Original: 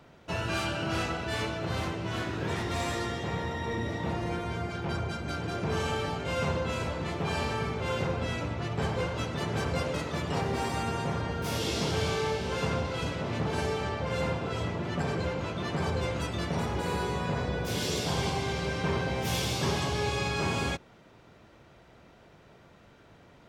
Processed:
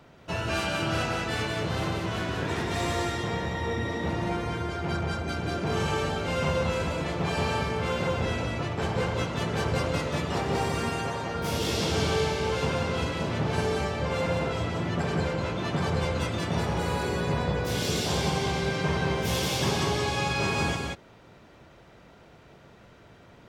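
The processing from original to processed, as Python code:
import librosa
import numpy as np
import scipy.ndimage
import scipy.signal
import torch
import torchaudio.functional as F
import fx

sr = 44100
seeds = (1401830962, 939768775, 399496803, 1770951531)

y = fx.low_shelf(x, sr, hz=170.0, db=-12.0, at=(10.89, 11.35))
y = y + 10.0 ** (-3.5 / 20.0) * np.pad(y, (int(181 * sr / 1000.0), 0))[:len(y)]
y = y * 10.0 ** (1.5 / 20.0)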